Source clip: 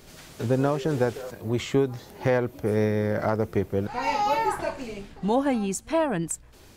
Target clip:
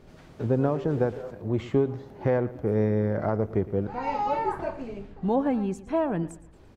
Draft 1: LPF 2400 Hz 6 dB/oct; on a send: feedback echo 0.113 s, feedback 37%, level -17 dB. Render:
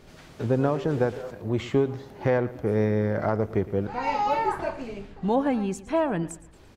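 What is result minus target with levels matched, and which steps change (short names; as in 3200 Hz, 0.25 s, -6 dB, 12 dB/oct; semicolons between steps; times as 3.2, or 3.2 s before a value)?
2000 Hz band +4.5 dB
change: LPF 860 Hz 6 dB/oct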